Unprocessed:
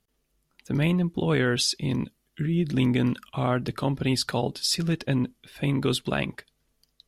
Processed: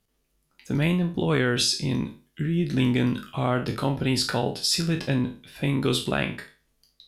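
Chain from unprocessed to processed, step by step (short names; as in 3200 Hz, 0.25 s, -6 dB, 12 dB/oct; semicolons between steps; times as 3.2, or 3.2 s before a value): spectral trails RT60 0.35 s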